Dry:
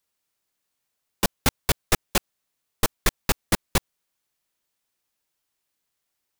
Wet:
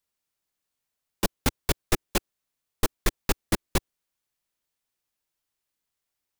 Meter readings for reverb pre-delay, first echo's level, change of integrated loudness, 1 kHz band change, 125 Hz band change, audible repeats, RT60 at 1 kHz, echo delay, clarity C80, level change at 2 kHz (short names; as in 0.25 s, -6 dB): none, none, -4.0 dB, -4.5 dB, -2.0 dB, none, none, none, none, -5.0 dB